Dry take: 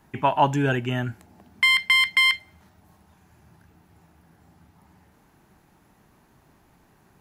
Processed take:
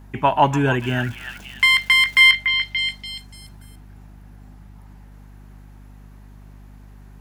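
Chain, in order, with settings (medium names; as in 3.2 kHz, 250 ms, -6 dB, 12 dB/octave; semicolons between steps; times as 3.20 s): 0.79–2.20 s: crackle 460 per s -37 dBFS; repeats whose band climbs or falls 289 ms, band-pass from 1.7 kHz, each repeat 0.7 oct, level -4 dB; hum 50 Hz, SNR 21 dB; trim +3.5 dB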